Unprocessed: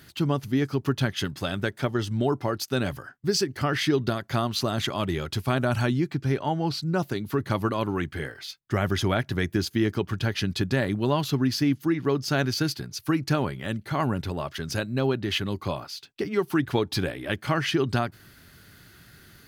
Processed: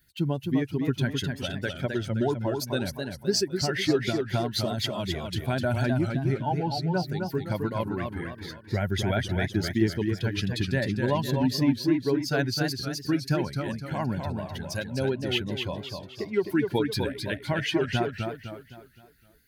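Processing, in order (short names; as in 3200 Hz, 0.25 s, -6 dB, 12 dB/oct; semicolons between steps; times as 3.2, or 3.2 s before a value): per-bin expansion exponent 1.5; Butterworth band-stop 1200 Hz, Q 4.1; warbling echo 0.257 s, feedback 42%, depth 141 cents, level -5 dB; gain +1 dB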